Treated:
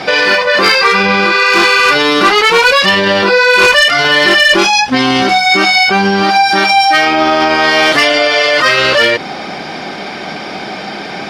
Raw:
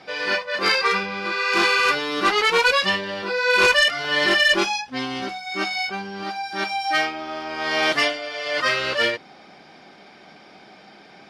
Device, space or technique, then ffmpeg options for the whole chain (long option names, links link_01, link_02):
loud club master: -af "acompressor=threshold=-21dB:ratio=2.5,asoftclip=type=hard:threshold=-16dB,alimiter=level_in=25dB:limit=-1dB:release=50:level=0:latency=1,volume=-1dB"